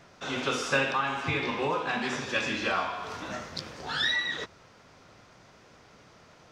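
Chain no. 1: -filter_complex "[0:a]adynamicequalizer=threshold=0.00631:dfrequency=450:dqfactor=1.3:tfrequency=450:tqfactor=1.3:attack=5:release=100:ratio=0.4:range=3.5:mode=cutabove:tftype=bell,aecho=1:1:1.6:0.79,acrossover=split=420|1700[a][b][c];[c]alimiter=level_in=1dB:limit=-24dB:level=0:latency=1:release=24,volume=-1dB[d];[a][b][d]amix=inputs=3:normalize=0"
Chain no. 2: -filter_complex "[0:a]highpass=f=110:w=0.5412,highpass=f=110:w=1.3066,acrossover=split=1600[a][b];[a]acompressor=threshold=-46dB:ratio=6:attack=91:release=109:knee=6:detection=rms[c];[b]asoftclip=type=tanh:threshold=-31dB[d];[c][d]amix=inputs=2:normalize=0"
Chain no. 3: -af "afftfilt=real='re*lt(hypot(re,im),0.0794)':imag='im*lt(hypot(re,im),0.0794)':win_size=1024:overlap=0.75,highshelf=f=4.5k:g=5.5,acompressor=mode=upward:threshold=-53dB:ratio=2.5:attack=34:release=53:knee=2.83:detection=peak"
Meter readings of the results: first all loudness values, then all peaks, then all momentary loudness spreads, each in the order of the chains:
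-29.0, -35.0, -34.0 LUFS; -13.0, -24.5, -13.5 dBFS; 10, 10, 21 LU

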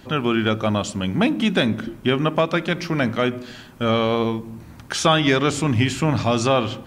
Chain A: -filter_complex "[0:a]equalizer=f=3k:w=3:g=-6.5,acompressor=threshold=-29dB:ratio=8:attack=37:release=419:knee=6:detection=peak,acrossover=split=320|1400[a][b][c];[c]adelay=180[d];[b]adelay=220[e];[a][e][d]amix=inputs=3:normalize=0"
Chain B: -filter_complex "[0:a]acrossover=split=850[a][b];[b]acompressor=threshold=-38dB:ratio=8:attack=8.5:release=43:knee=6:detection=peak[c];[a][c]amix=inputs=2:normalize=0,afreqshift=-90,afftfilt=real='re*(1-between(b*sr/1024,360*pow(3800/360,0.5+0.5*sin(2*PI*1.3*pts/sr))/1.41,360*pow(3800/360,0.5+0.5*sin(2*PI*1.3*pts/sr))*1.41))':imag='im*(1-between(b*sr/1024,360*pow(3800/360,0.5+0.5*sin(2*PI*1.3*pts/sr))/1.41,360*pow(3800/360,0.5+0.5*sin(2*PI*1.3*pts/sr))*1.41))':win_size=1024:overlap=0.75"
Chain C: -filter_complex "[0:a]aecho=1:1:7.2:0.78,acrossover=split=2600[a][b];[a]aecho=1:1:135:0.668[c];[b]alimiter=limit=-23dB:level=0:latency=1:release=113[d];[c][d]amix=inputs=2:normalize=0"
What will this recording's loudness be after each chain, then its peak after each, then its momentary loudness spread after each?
-33.5, -23.5, -17.5 LUFS; -14.0, -8.0, -2.0 dBFS; 5, 7, 8 LU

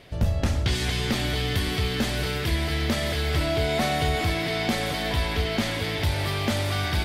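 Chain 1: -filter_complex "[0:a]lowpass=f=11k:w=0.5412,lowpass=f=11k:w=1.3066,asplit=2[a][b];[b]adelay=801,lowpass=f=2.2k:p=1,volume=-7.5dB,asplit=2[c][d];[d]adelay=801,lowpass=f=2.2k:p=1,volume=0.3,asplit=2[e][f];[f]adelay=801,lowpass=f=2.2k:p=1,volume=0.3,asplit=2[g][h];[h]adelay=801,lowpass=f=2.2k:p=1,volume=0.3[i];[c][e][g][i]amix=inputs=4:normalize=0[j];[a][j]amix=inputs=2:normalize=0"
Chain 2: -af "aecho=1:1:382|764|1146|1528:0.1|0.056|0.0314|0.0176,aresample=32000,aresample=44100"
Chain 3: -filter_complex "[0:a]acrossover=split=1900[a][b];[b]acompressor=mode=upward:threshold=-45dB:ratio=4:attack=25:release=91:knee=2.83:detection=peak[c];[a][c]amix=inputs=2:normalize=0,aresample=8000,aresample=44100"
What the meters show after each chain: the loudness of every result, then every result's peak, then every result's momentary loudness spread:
-25.0, -25.5, -26.0 LUFS; -13.0, -14.0, -13.5 dBFS; 2, 2, 2 LU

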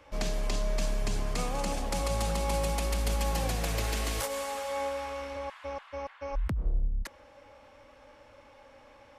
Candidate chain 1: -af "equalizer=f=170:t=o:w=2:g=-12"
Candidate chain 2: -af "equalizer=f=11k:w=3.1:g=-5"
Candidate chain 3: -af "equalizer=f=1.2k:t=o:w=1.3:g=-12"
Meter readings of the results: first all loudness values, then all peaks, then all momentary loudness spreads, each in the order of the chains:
-35.0, -33.0, -34.5 LUFS; -19.5, -19.0, -19.5 dBFS; 8, 8, 11 LU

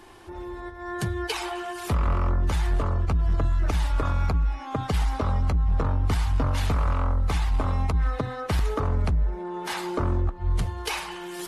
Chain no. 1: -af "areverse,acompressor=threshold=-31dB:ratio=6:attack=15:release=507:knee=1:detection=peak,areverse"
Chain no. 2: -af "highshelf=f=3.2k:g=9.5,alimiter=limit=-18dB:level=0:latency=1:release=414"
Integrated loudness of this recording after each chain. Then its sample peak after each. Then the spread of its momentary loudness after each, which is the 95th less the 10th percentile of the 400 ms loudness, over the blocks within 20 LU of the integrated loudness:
-36.0, -28.5 LUFS; -22.5, -18.0 dBFS; 3, 6 LU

